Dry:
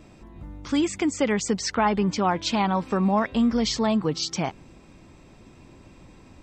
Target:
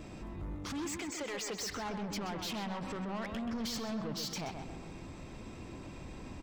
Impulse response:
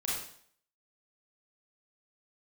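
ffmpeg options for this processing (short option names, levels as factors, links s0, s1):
-filter_complex "[0:a]asettb=1/sr,asplit=3[s0][s1][s2];[s0]atrim=end=0.974[s3];[s1]atrim=start=0.97:end=1.61,asetpts=PTS-STARTPTS,afade=t=in:d=0.004:c=qsin,afade=t=out:st=0.636:d=0.004:c=qsin,acrossover=split=420 5000:gain=0.0891 1 0.251[s4][s5][s6];[s4][s5][s6]amix=inputs=3:normalize=0[s7];[s2]atrim=start=1.606[s8];[s3][s7]acrossfade=d=0.004:c1=hsin:c2=qsin[s9];[s9][s8]acrossfade=d=0.004:c1=qsin:c2=hsin,acompressor=threshold=0.0447:ratio=6,alimiter=level_in=1.41:limit=0.0631:level=0:latency=1:release=13,volume=0.708,asoftclip=type=tanh:threshold=0.0106,asplit=2[s10][s11];[s11]adelay=129,lowpass=f=3300:p=1,volume=0.501,asplit=2[s12][s13];[s13]adelay=129,lowpass=f=3300:p=1,volume=0.49,asplit=2[s14][s15];[s15]adelay=129,lowpass=f=3300:p=1,volume=0.49,asplit=2[s16][s17];[s17]adelay=129,lowpass=f=3300:p=1,volume=0.49,asplit=2[s18][s19];[s19]adelay=129,lowpass=f=3300:p=1,volume=0.49,asplit=2[s20][s21];[s21]adelay=129,lowpass=f=3300:p=1,volume=0.49[s22];[s10][s12][s14][s16][s18][s20][s22]amix=inputs=7:normalize=0,volume=1.41"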